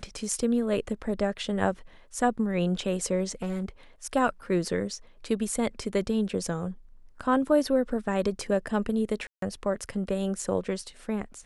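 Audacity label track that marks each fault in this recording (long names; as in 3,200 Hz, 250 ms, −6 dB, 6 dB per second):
3.420000	3.680000	clipping −26 dBFS
9.270000	9.420000	drop-out 153 ms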